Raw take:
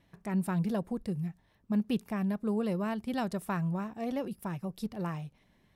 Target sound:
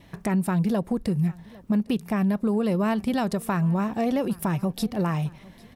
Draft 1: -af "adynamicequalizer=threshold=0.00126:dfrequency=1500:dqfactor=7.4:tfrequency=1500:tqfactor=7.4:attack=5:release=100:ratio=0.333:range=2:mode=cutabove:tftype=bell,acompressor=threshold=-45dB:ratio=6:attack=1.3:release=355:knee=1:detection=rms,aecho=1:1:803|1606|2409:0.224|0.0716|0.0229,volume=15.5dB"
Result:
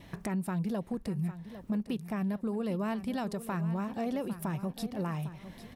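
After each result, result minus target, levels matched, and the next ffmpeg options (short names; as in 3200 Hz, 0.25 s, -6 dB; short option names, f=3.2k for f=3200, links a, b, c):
compressor: peak gain reduction +9 dB; echo-to-direct +10 dB
-af "adynamicequalizer=threshold=0.00126:dfrequency=1500:dqfactor=7.4:tfrequency=1500:tqfactor=7.4:attack=5:release=100:ratio=0.333:range=2:mode=cutabove:tftype=bell,acompressor=threshold=-34dB:ratio=6:attack=1.3:release=355:knee=1:detection=rms,aecho=1:1:803|1606|2409:0.224|0.0716|0.0229,volume=15.5dB"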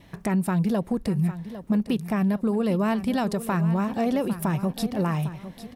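echo-to-direct +10 dB
-af "adynamicequalizer=threshold=0.00126:dfrequency=1500:dqfactor=7.4:tfrequency=1500:tqfactor=7.4:attack=5:release=100:ratio=0.333:range=2:mode=cutabove:tftype=bell,acompressor=threshold=-34dB:ratio=6:attack=1.3:release=355:knee=1:detection=rms,aecho=1:1:803|1606:0.0708|0.0227,volume=15.5dB"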